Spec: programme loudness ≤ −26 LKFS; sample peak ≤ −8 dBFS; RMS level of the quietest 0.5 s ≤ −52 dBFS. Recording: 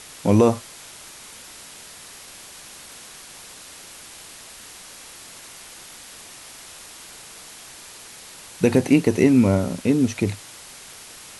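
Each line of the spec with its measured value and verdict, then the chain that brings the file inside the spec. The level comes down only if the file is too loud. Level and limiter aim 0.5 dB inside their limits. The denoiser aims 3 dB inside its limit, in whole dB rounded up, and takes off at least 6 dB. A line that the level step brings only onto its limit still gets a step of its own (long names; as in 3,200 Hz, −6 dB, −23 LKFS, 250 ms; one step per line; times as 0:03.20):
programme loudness −19.5 LKFS: out of spec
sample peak −4.5 dBFS: out of spec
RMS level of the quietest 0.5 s −42 dBFS: out of spec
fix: broadband denoise 6 dB, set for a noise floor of −42 dBFS
level −7 dB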